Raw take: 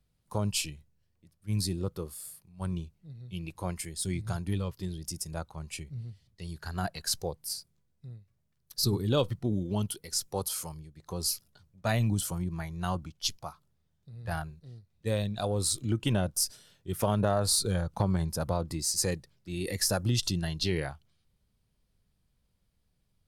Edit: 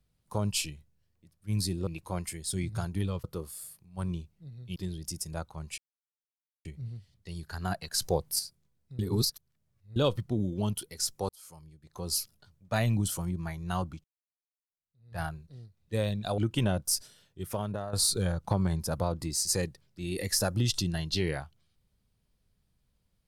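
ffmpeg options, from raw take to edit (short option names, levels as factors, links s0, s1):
-filter_complex "[0:a]asplit=13[s0][s1][s2][s3][s4][s5][s6][s7][s8][s9][s10][s11][s12];[s0]atrim=end=1.872[s13];[s1]atrim=start=3.388:end=4.762[s14];[s2]atrim=start=1.868:end=3.392[s15];[s3]atrim=start=4.758:end=5.78,asetpts=PTS-STARTPTS,afade=t=out:st=1.018:d=0.004:c=hsin,apad=pad_dur=0.87[s16];[s4]atrim=start=5.78:end=7.152,asetpts=PTS-STARTPTS,afade=t=in:d=0.004:c=hsin[s17];[s5]atrim=start=7.148:end=7.522,asetpts=PTS-STARTPTS,volume=2.11[s18];[s6]atrim=start=7.518:end=8.122[s19];[s7]atrim=start=8.118:end=9.092,asetpts=PTS-STARTPTS,areverse[s20];[s8]atrim=start=9.088:end=10.42,asetpts=PTS-STARTPTS,afade=t=out:st=1.328:d=0.004:c=hsin[s21];[s9]atrim=start=10.42:end=13.17,asetpts=PTS-STARTPTS,afade=t=in:d=0.88,afade=t=out:st=2.746:d=0.004:c=hsin[s22];[s10]atrim=start=13.17:end=15.512,asetpts=PTS-STARTPTS,afade=t=in:d=1.17:c=exp[s23];[s11]atrim=start=15.868:end=17.42,asetpts=PTS-STARTPTS,afade=t=out:st=0.572:d=0.98:silence=0.237137[s24];[s12]atrim=start=17.42,asetpts=PTS-STARTPTS,afade=t=in:d=0.004:c=hsin:silence=0.237137[s25];[s13][s14]acrossfade=d=0.004:c1=hsin:c2=hsin[s26];[s26][s15]acrossfade=d=0.004:c1=hsin:c2=hsin[s27];[s16][s17]concat=n=2:v=0:a=1[s28];[s27][s28]acrossfade=d=0.004:c1=hsin:c2=hsin[s29];[s29][s18]acrossfade=d=0.004:c1=hsin:c2=hsin[s30];[s30][s19]acrossfade=d=0.004:c1=hsin:c2=hsin[s31];[s31][s20]acrossfade=d=0.004:c1=hsin:c2=hsin[s32];[s21][s22][s23]concat=n=3:v=0:a=1[s33];[s32][s33]acrossfade=d=0.004:c1=hsin:c2=hsin[s34];[s24][s25]concat=n=2:v=0:a=1[s35];[s34][s35]acrossfade=d=0.004:c1=hsin:c2=hsin"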